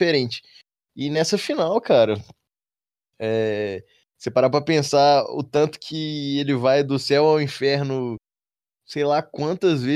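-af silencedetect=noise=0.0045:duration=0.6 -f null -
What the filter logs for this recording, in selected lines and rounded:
silence_start: 2.32
silence_end: 3.20 | silence_duration: 0.88
silence_start: 8.17
silence_end: 8.88 | silence_duration: 0.71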